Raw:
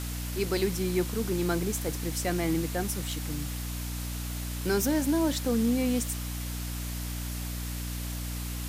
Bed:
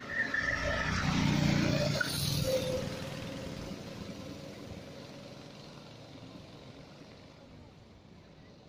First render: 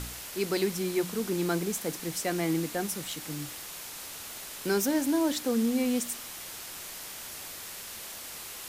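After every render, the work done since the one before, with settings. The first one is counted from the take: de-hum 60 Hz, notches 5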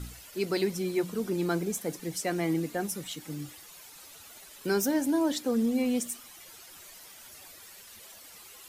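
denoiser 12 dB, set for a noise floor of -42 dBFS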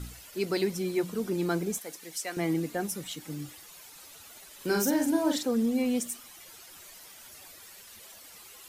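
1.79–2.37 HPF 1200 Hz 6 dB/oct; 4.55–5.46 doubler 44 ms -3.5 dB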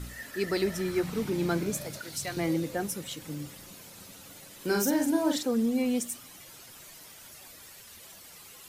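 add bed -11 dB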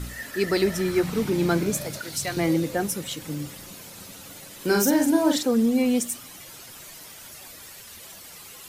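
gain +6 dB

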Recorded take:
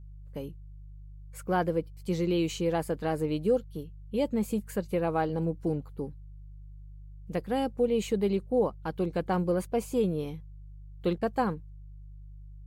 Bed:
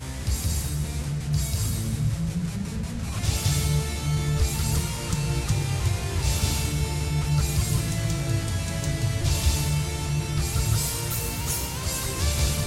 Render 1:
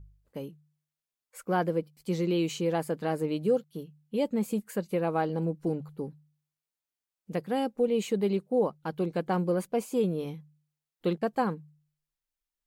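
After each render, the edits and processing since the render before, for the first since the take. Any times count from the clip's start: de-hum 50 Hz, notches 3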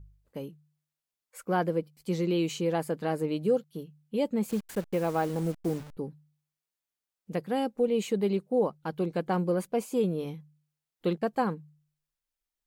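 4.49–5.97 level-crossing sampler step -40.5 dBFS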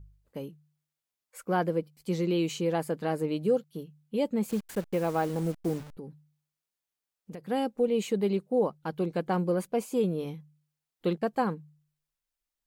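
5.96–7.47 compressor, threshold -37 dBFS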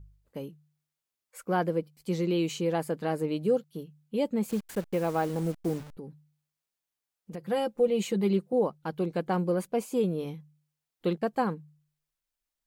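7.32–8.53 comb 5.8 ms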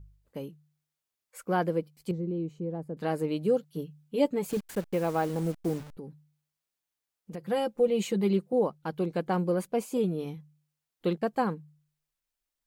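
2.11–2.97 EQ curve 120 Hz 0 dB, 500 Hz -8 dB, 2800 Hz -27 dB; 3.62–4.57 comb 6.9 ms, depth 71%; 9.97–10.37 notch comb 540 Hz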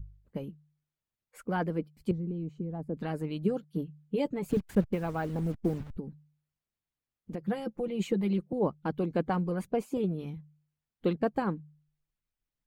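tone controls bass +15 dB, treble -8 dB; harmonic-percussive split harmonic -12 dB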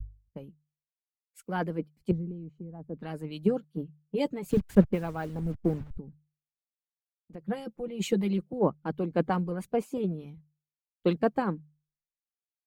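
three-band expander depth 100%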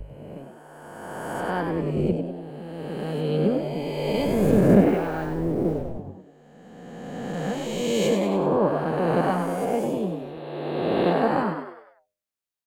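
spectral swells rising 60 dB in 2.34 s; frequency-shifting echo 98 ms, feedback 45%, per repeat +92 Hz, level -6.5 dB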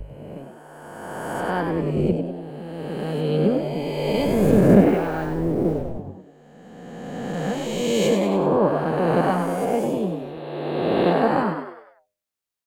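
gain +2.5 dB

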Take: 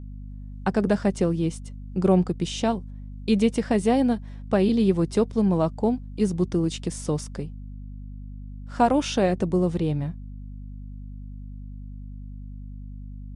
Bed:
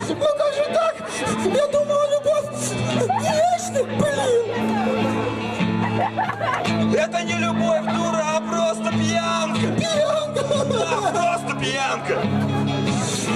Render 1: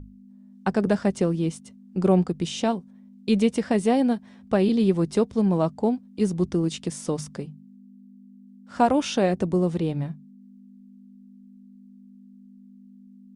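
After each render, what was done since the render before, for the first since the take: notches 50/100/150 Hz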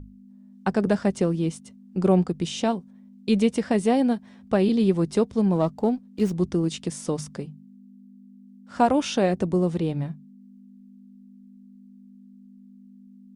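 5.55–6.33 running maximum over 3 samples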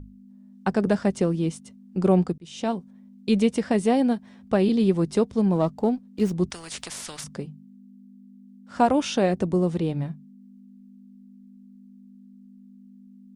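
2.38–2.78 fade in; 6.5–7.24 spectral compressor 4:1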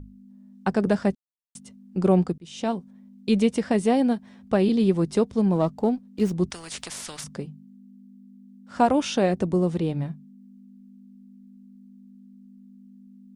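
1.15–1.55 mute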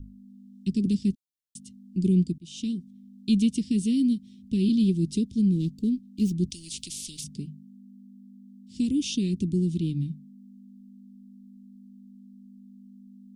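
inverse Chebyshev band-stop 580–1600 Hz, stop band 50 dB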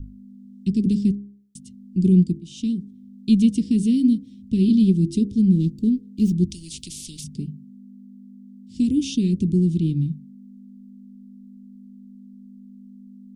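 low shelf 470 Hz +7.5 dB; de-hum 67.63 Hz, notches 12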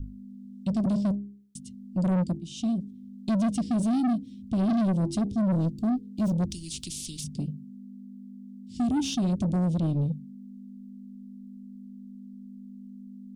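soft clip -22 dBFS, distortion -8 dB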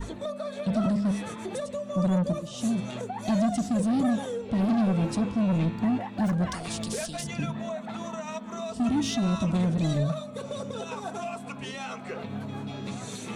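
add bed -15 dB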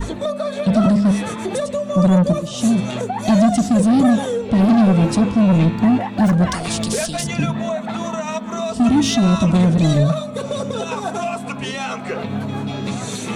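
gain +11 dB

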